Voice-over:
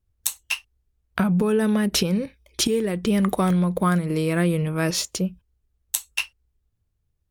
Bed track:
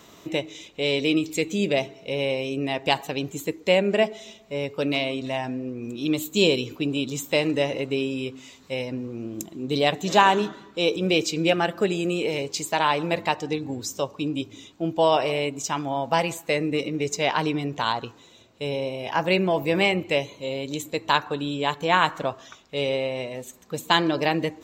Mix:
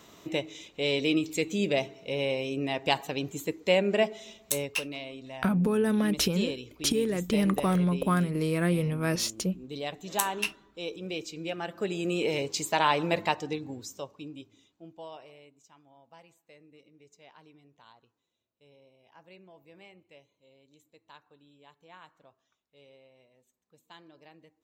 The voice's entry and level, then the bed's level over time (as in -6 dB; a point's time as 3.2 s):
4.25 s, -5.0 dB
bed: 4.6 s -4 dB
4.82 s -14 dB
11.52 s -14 dB
12.21 s -2.5 dB
13.22 s -2.5 dB
15.7 s -32 dB